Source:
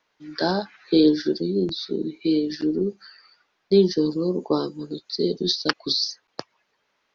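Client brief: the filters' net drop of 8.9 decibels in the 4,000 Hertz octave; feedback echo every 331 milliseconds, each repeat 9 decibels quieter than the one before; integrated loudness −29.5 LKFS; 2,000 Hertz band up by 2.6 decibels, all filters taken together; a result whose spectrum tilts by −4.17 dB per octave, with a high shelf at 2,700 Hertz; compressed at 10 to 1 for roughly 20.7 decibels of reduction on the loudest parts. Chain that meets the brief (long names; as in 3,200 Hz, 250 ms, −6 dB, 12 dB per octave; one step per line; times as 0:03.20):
parametric band 2,000 Hz +6.5 dB
high-shelf EQ 2,700 Hz −3.5 dB
parametric band 4,000 Hz −8.5 dB
downward compressor 10 to 1, threshold −34 dBFS
repeating echo 331 ms, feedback 35%, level −9 dB
level +9.5 dB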